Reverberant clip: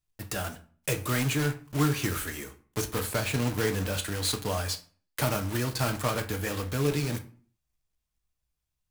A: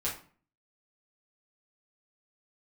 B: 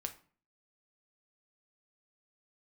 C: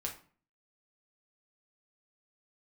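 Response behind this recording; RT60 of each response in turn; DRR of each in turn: B; 0.45, 0.45, 0.45 seconds; −7.0, 5.5, −0.5 decibels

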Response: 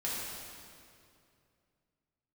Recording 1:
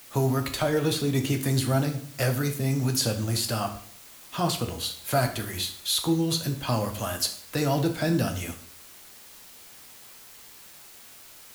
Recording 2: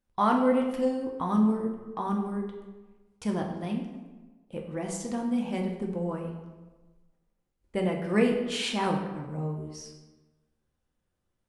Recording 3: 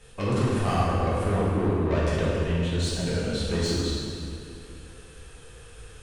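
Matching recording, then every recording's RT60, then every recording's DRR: 3; 0.55, 1.3, 2.5 seconds; 4.5, 0.5, −8.0 decibels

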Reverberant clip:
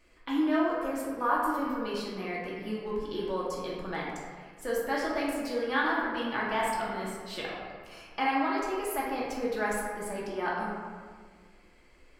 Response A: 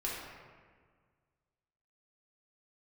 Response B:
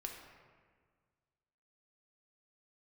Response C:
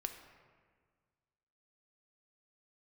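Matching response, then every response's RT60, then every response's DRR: A; 1.7, 1.7, 1.7 seconds; −6.0, 1.0, 5.5 decibels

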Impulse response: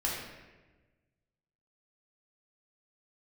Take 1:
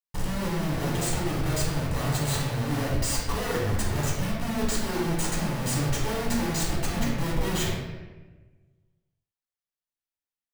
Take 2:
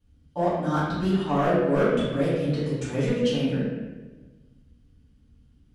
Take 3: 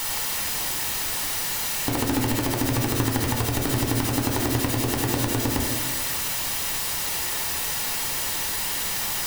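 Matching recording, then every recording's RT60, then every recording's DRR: 1; 1.2, 1.2, 1.2 seconds; −5.0, −11.5, 1.5 decibels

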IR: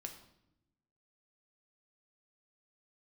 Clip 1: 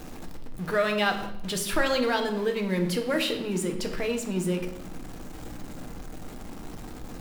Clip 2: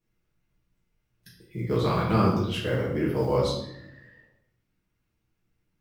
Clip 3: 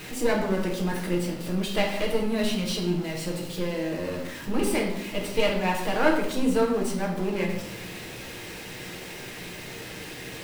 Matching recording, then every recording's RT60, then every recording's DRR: 1; 0.85, 0.80, 0.80 seconds; 4.0, −6.5, −1.5 decibels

